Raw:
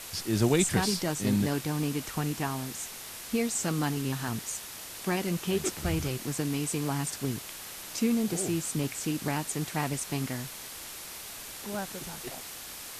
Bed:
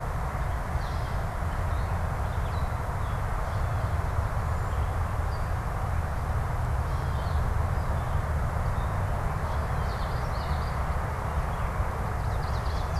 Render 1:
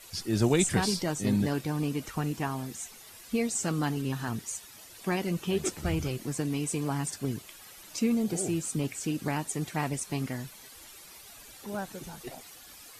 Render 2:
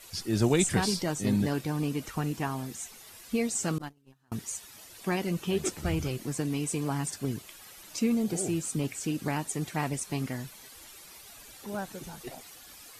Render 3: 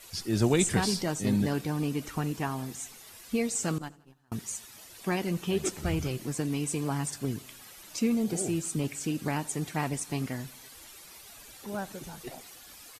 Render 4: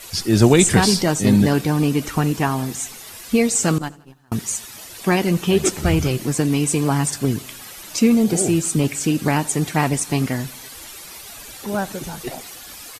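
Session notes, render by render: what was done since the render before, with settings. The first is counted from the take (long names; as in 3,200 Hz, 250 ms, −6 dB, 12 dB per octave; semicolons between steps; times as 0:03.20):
broadband denoise 12 dB, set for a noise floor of −43 dBFS
0:03.78–0:04.32: noise gate −27 dBFS, range −35 dB
repeating echo 84 ms, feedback 58%, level −23.5 dB
level +12 dB; brickwall limiter −2 dBFS, peak gain reduction 1.5 dB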